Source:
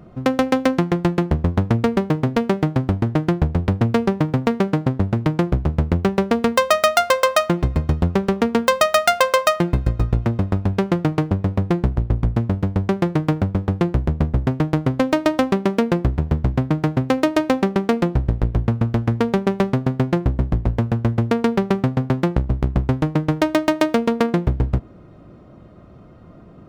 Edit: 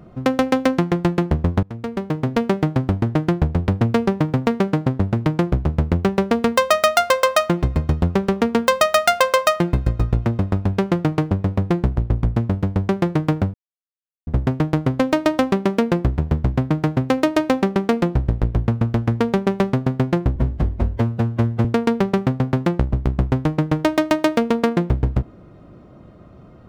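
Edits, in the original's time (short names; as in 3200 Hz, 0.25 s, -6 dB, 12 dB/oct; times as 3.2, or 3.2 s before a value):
1.63–2.4 fade in linear, from -22.5 dB
13.54–14.27 mute
20.36–21.22 stretch 1.5×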